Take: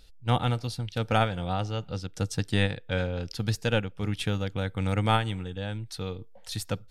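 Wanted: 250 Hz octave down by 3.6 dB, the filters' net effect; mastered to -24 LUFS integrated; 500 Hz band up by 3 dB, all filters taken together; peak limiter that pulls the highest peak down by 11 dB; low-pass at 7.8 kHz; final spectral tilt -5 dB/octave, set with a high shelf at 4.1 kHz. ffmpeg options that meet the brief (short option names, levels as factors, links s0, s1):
-af "lowpass=7800,equalizer=f=250:t=o:g=-6,equalizer=f=500:t=o:g=4.5,highshelf=f=4100:g=6,volume=2.51,alimiter=limit=0.282:level=0:latency=1"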